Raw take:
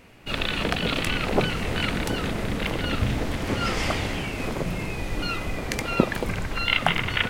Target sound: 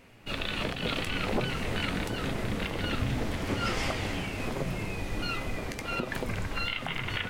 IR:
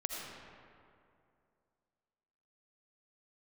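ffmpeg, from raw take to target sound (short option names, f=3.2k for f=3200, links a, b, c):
-af "alimiter=limit=-14.5dB:level=0:latency=1:release=147,flanger=delay=7.4:depth=3.5:regen=68:speed=1.3:shape=sinusoidal"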